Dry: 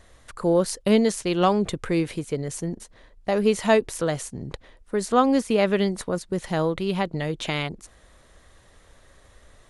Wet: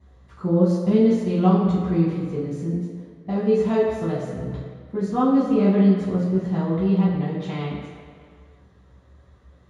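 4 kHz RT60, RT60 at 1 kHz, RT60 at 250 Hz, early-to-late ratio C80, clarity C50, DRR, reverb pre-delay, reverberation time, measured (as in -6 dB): 1.6 s, 2.2 s, 1.7 s, 3.5 dB, 1.5 dB, -10.0 dB, 3 ms, 2.1 s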